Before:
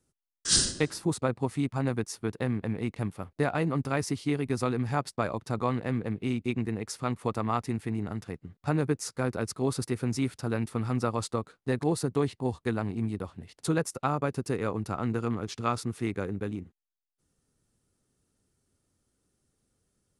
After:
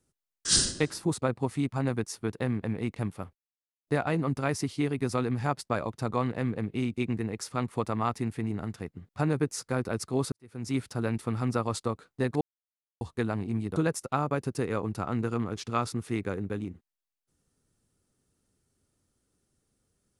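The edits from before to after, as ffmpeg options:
ffmpeg -i in.wav -filter_complex "[0:a]asplit=6[link_01][link_02][link_03][link_04][link_05][link_06];[link_01]atrim=end=3.35,asetpts=PTS-STARTPTS,afade=type=out:start_time=3.346:duration=0.004:curve=hsin,apad=pad_dur=0.52[link_07];[link_02]atrim=start=3.35:end=9.8,asetpts=PTS-STARTPTS,afade=type=in:duration=0.004:curve=hsin,afade=type=out:start_time=6.446:duration=0.004:curve=hsin[link_08];[link_03]atrim=start=9.8:end=11.89,asetpts=PTS-STARTPTS,afade=type=in:duration=0.44:curve=qua,afade=type=out:start_time=2.086:duration=0.004:curve=hsin[link_09];[link_04]atrim=start=11.89:end=12.49,asetpts=PTS-STARTPTS,volume=0[link_10];[link_05]atrim=start=12.49:end=13.242,asetpts=PTS-STARTPTS,afade=type=in:duration=0.004:curve=hsin[link_11];[link_06]atrim=start=13.668[link_12];[link_07][link_08][link_09][link_10][link_11]concat=n=5:v=0:a=1[link_13];[link_13][link_12]acrossfade=duration=0.004:curve1=hsin:curve2=hsin" out.wav

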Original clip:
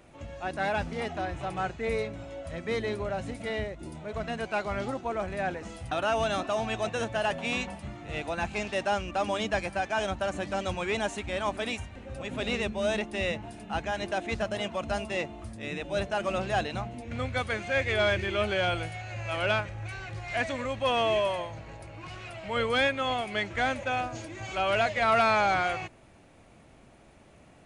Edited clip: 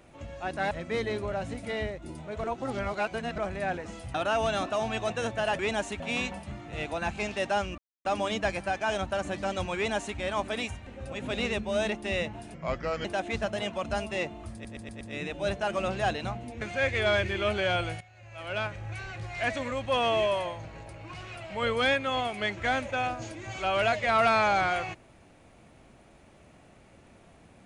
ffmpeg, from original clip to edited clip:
ffmpeg -i in.wav -filter_complex "[0:a]asplit=15[link_01][link_02][link_03][link_04][link_05][link_06][link_07][link_08][link_09][link_10][link_11][link_12][link_13][link_14][link_15];[link_01]atrim=end=0.712[link_16];[link_02]atrim=start=2.478:end=4.212[link_17];[link_03]atrim=start=4.208:end=5.152,asetpts=PTS-STARTPTS,areverse[link_18];[link_04]atrim=start=5.148:end=7.362[link_19];[link_05]atrim=start=10.848:end=11.262[link_20];[link_06]atrim=start=7.358:end=9.14,asetpts=PTS-STARTPTS,afade=type=out:start_time=1.778:duration=0.004:curve=hsin,apad=pad_dur=0.27[link_21];[link_07]atrim=start=9.14:end=13.634,asetpts=PTS-STARTPTS,afade=type=in:duration=0.004:curve=hsin[link_22];[link_08]atrim=start=13.63:end=14.03,asetpts=PTS-STARTPTS,asetrate=34839,aresample=44100,atrim=end_sample=22329,asetpts=PTS-STARTPTS[link_23];[link_09]atrim=start=14.026:end=15.632[link_24];[link_10]atrim=start=15.508:end=15.632[link_25];[link_11]atrim=start=15.508:end=15.632[link_26];[link_12]atrim=start=15.508:end=15.632[link_27];[link_13]atrim=start=15.508:end=17.122[link_28];[link_14]atrim=start=17.548:end=18.94,asetpts=PTS-STARTPTS,afade=type=out:start_time=1.388:duration=0.004:curve=hsin:silence=0.141254[link_29];[link_15]atrim=start=18.94,asetpts=PTS-STARTPTS,afade=type=in:duration=0.83:curve=qua:silence=0.141254[link_30];[link_16][link_17]acrossfade=duration=0.004:curve1=hsin:curve2=hsin[link_31];[link_31][link_18]acrossfade=duration=0.004:curve1=hsin:curve2=hsin[link_32];[link_32][link_19]acrossfade=duration=0.004:curve1=hsin:curve2=hsin[link_33];[link_33][link_20]acrossfade=duration=0.004:curve1=hsin:curve2=hsin[link_34];[link_21][link_22]concat=n=2:v=0:a=1[link_35];[link_34][link_35]acrossfade=duration=0.004:curve1=hsin:curve2=hsin[link_36];[link_36][link_23]acrossfade=duration=0.004:curve1=hsin:curve2=hsin[link_37];[link_37][link_24]acrossfade=duration=0.004:curve1=hsin:curve2=hsin[link_38];[link_38][link_25]acrossfade=duration=0.004:curve1=hsin:curve2=hsin[link_39];[link_39][link_26]acrossfade=duration=0.004:curve1=hsin:curve2=hsin[link_40];[link_40][link_27]acrossfade=duration=0.004:curve1=hsin:curve2=hsin[link_41];[link_41][link_28]acrossfade=duration=0.004:curve1=hsin:curve2=hsin[link_42];[link_29][link_30]concat=n=2:v=0:a=1[link_43];[link_42][link_43]acrossfade=duration=0.004:curve1=hsin:curve2=hsin" out.wav

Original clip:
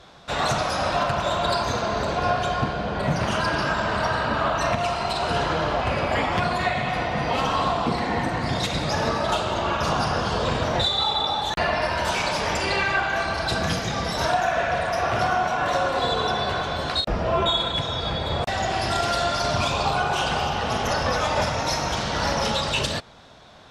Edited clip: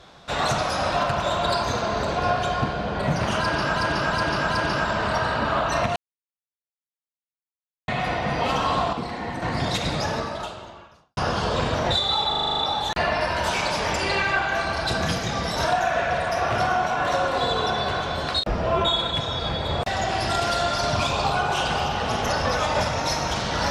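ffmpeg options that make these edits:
ffmpeg -i in.wav -filter_complex "[0:a]asplit=16[link_01][link_02][link_03][link_04][link_05][link_06][link_07][link_08][link_09][link_10][link_11][link_12][link_13][link_14][link_15][link_16];[link_01]atrim=end=3.762[link_17];[link_02]atrim=start=3.388:end=3.762[link_18];[link_03]atrim=start=3.388:end=3.762[link_19];[link_04]atrim=start=3.388:end=4.85,asetpts=PTS-STARTPTS,afade=type=out:start_time=1.458:duration=0.004:curve=hsin[link_20];[link_05]atrim=start=4.85:end=6.77,asetpts=PTS-STARTPTS,volume=0[link_21];[link_06]atrim=start=6.77:end=7.822,asetpts=PTS-STARTPTS,afade=type=in:duration=0.004:curve=hsin[link_22];[link_07]atrim=start=7.818:end=8.312,asetpts=PTS-STARTPTS,volume=-6dB[link_23];[link_08]atrim=start=8.308:end=10.06,asetpts=PTS-STARTPTS,afade=type=out:start_time=0.532:duration=1.22:curve=qua[link_24];[link_09]atrim=start=10.06:end=11.232,asetpts=PTS-STARTPTS,afade=type=in:duration=0.004:curve=hsin[link_25];[link_10]atrim=start=11.188:end=11.232[link_26];[link_11]atrim=start=11.188:end=11.232[link_27];[link_12]atrim=start=11.188:end=11.232[link_28];[link_13]atrim=start=11.188:end=11.232[link_29];[link_14]atrim=start=11.188:end=11.232[link_30];[link_15]atrim=start=11.188:end=11.232[link_31];[link_16]atrim=start=11.188[link_32];[link_17][link_18]acrossfade=duration=0.004:curve1=hsin:curve2=hsin[link_33];[link_33][link_19]acrossfade=duration=0.004:curve1=hsin:curve2=hsin[link_34];[link_20][link_21][link_22]concat=n=3:v=0:a=1[link_35];[link_34][link_35]acrossfade=duration=0.004:curve1=hsin:curve2=hsin[link_36];[link_36][link_23]acrossfade=duration=0.004:curve1=hsin:curve2=hsin[link_37];[link_24][link_25]concat=n=2:v=0:a=1[link_38];[link_37][link_38]acrossfade=duration=0.004:curve1=hsin:curve2=hsin[link_39];[link_39][link_26]acrossfade=duration=0.004:curve1=hsin:curve2=hsin[link_40];[link_40][link_27]acrossfade=duration=0.004:curve1=hsin:curve2=hsin[link_41];[link_41][link_28]acrossfade=duration=0.004:curve1=hsin:curve2=hsin[link_42];[link_42][link_29]acrossfade=duration=0.004:curve1=hsin:curve2=hsin[link_43];[link_43][link_30]acrossfade=duration=0.004:curve1=hsin:curve2=hsin[link_44];[link_44][link_31]acrossfade=duration=0.004:curve1=hsin:curve2=hsin[link_45];[link_45][link_32]acrossfade=duration=0.004:curve1=hsin:curve2=hsin" out.wav

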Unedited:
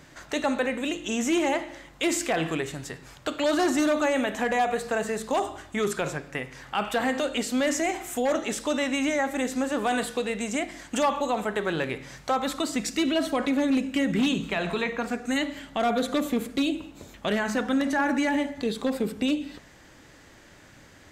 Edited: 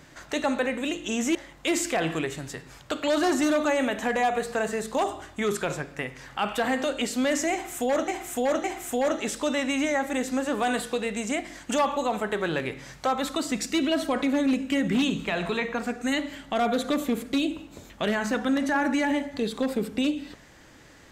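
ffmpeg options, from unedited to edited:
ffmpeg -i in.wav -filter_complex "[0:a]asplit=4[link_01][link_02][link_03][link_04];[link_01]atrim=end=1.352[link_05];[link_02]atrim=start=1.708:end=8.442[link_06];[link_03]atrim=start=7.878:end=8.442[link_07];[link_04]atrim=start=7.878[link_08];[link_05][link_06]acrossfade=duration=0.004:curve1=hsin:curve2=hsin[link_09];[link_09][link_07]acrossfade=duration=0.004:curve1=hsin:curve2=hsin[link_10];[link_10][link_08]acrossfade=duration=0.004:curve1=hsin:curve2=hsin" out.wav

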